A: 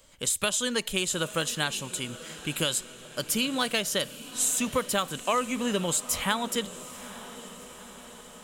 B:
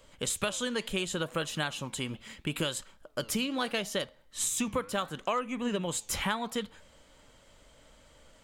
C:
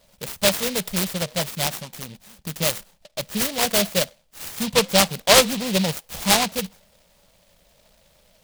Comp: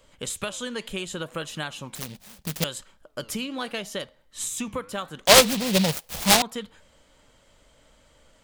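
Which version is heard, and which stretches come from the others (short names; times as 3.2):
B
1.95–2.64 from C
5.26–6.42 from C
not used: A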